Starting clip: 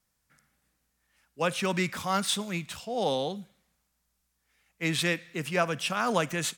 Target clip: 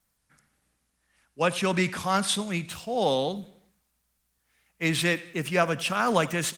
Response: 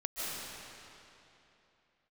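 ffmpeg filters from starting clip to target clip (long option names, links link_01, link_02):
-af "aecho=1:1:91|182|273|364:0.1|0.047|0.0221|0.0104,volume=3.5dB" -ar 48000 -c:a libopus -b:a 24k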